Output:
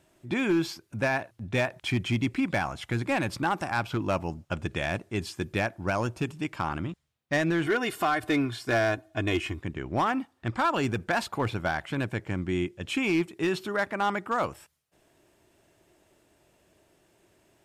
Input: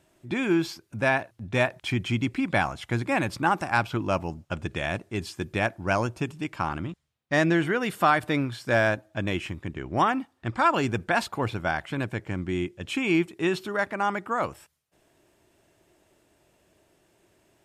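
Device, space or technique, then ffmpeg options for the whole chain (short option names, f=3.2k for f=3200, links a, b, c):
limiter into clipper: -filter_complex "[0:a]asettb=1/sr,asplit=3[a][b][c];[a]atrim=end=7.664[d];[b]atrim=start=7.66:end=9.61,asetpts=PTS-STARTPTS,afade=t=in:d=0.004:c=qsin,afade=t=out:st=1.946:d=0.004:c=qsin,aecho=1:1:2.8:0.67,atrim=end_sample=85995[e];[c]atrim=start=9.606[f];[d][e]acrossfade=d=0.004:c1=hsin:c2=qsin[g];[g][f]acrossfade=d=0.004:c1=qsin:c2=hsin,alimiter=limit=-15dB:level=0:latency=1:release=165,asoftclip=type=hard:threshold=-19dB"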